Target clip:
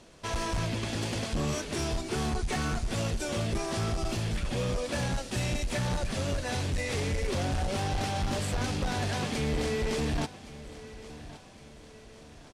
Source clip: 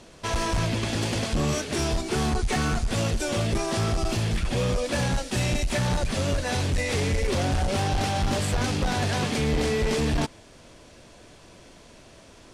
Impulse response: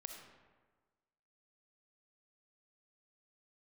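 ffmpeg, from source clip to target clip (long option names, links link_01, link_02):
-af "aecho=1:1:1115|2230|3345|4460:0.15|0.0673|0.0303|0.0136,volume=-5.5dB"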